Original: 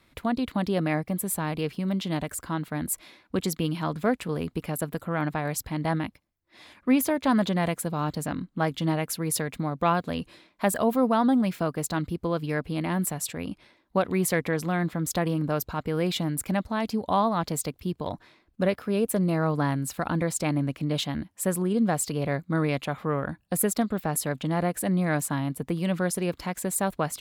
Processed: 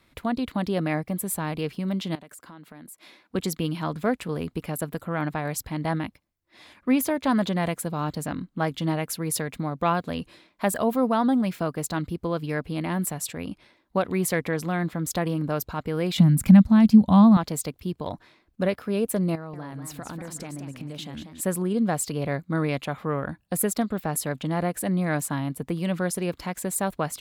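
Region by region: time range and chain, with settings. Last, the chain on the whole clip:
2.15–3.35 HPF 170 Hz + compressor 5:1, threshold -43 dBFS
16.18–17.37 resonant low shelf 280 Hz +9.5 dB, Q 3 + upward compressor, threshold -22 dBFS
19.35–21.41 compressor 10:1, threshold -32 dBFS + warbling echo 0.184 s, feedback 35%, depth 217 cents, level -8 dB
whole clip: dry

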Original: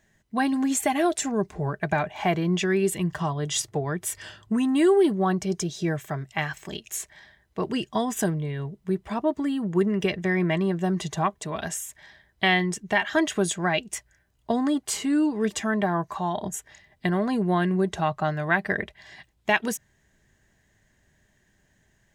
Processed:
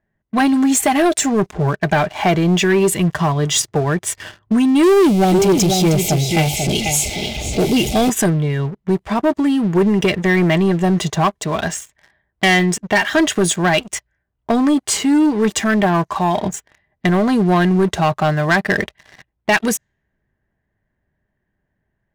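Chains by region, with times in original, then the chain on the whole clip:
4.83–8.1 zero-crossing step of -28 dBFS + brick-wall FIR band-stop 890–2000 Hz + echo 0.491 s -6.5 dB
whole clip: low-pass opened by the level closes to 1500 Hz, open at -23.5 dBFS; sample leveller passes 3

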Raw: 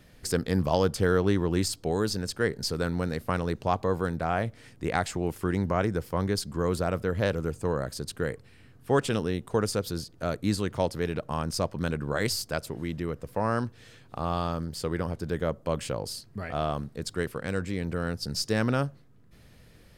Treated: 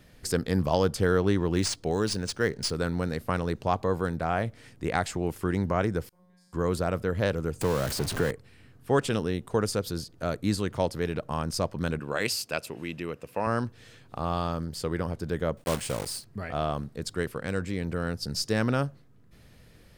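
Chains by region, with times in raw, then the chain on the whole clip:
1.39–2.71 high shelf 4200 Hz +6.5 dB + decimation joined by straight lines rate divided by 3×
6.09–6.53 AM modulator 28 Hz, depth 60% + compressor 3:1, threshold -42 dBFS + resonator 180 Hz, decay 1.2 s, mix 100%
7.61–8.31 zero-crossing step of -31.5 dBFS + three-band squash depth 70%
11.99–13.47 HPF 260 Hz 6 dB/oct + bell 2600 Hz +12.5 dB 0.27 oct
15.57–16.25 block floating point 3-bit + bell 8900 Hz +7 dB 0.28 oct
whole clip: dry

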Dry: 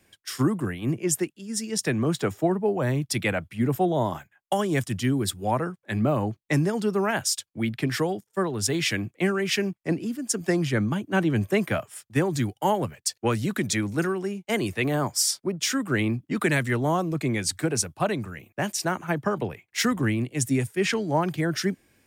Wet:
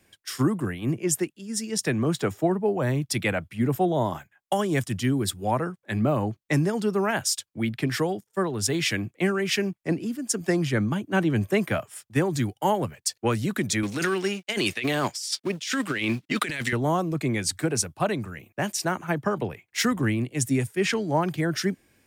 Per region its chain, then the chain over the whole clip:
13.83–16.73 G.711 law mismatch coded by A + weighting filter D + negative-ratio compressor -27 dBFS
whole clip: dry

